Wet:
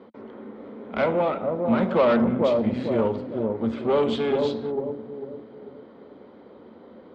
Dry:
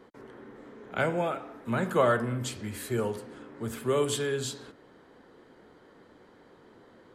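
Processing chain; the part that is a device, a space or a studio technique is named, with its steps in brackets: analogue delay pedal into a guitar amplifier (analogue delay 0.446 s, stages 2048, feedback 40%, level -4 dB; tube stage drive 26 dB, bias 0.7; speaker cabinet 75–3700 Hz, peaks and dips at 130 Hz -9 dB, 220 Hz +8 dB, 560 Hz +5 dB, 1700 Hz -9 dB, 2800 Hz -4 dB); gain +9 dB

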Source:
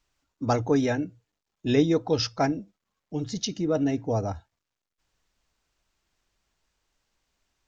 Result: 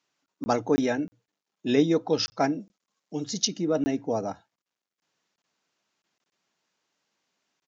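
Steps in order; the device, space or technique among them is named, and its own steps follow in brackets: call with lost packets (HPF 160 Hz 24 dB/oct; downsampling 16000 Hz; packet loss packets of 20 ms random); 2.6–3.48 tone controls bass -1 dB, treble +8 dB

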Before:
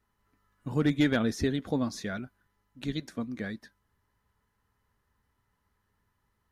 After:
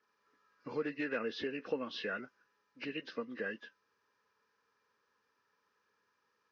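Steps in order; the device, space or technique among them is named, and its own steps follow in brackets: hearing aid with frequency lowering (nonlinear frequency compression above 1500 Hz 1.5:1; compressor 4:1, threshold -32 dBFS, peak gain reduction 10.5 dB; speaker cabinet 350–5800 Hz, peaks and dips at 480 Hz +9 dB, 710 Hz -7 dB, 1200 Hz +4 dB, 1700 Hz +5 dB, 2500 Hz +5 dB, 4800 Hz +6 dB); gain -1 dB

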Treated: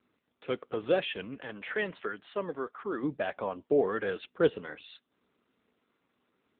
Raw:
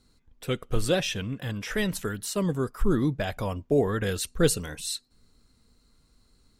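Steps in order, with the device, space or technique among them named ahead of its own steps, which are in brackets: 1.45–3.02 HPF 170 Hz -> 560 Hz 6 dB/oct; telephone (BPF 330–3000 Hz; AMR-NB 7.95 kbps 8000 Hz)

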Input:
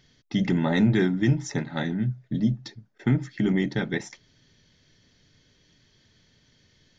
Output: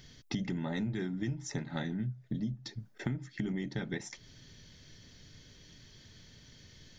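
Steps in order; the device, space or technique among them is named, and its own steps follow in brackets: ASMR close-microphone chain (low shelf 130 Hz +6.5 dB; compressor 6:1, threshold -37 dBFS, peak gain reduction 21 dB; high shelf 6100 Hz +8 dB); gain +3 dB

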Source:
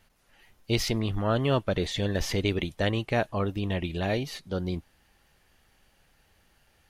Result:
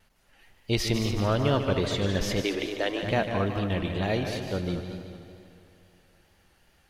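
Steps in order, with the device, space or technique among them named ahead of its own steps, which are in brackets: multi-head tape echo (multi-head echo 75 ms, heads second and third, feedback 55%, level -9 dB; wow and flutter); 2.42–3.03 elliptic high-pass 280 Hz; high shelf 12000 Hz -3 dB; digital reverb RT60 3.1 s, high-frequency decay 0.55×, pre-delay 35 ms, DRR 14.5 dB

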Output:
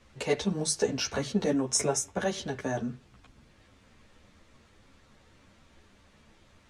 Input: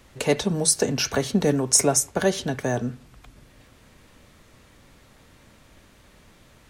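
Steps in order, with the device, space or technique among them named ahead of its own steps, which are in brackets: string-machine ensemble chorus (ensemble effect; LPF 7500 Hz 12 dB/oct); 1.5–2.31 notch 4500 Hz, Q 6; gain -3 dB

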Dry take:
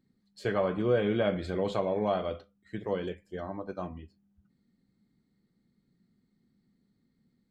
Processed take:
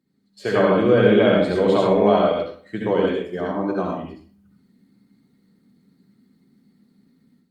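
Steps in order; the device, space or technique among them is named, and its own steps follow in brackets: far-field microphone of a smart speaker (reverb RT60 0.45 s, pre-delay 60 ms, DRR -2 dB; HPF 150 Hz 12 dB/oct; AGC gain up to 10 dB; Opus 48 kbps 48000 Hz)

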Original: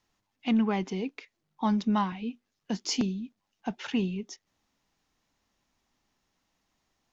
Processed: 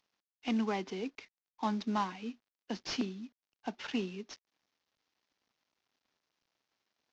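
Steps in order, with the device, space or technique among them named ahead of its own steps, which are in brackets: early wireless headset (HPF 230 Hz 24 dB/oct; CVSD 32 kbps); gain -3.5 dB

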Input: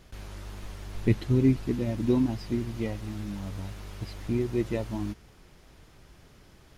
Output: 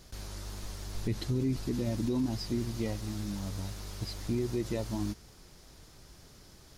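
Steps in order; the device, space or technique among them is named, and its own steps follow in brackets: over-bright horn tweeter (resonant high shelf 3600 Hz +6.5 dB, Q 1.5; limiter -22 dBFS, peak gain reduction 10 dB); gain -1 dB

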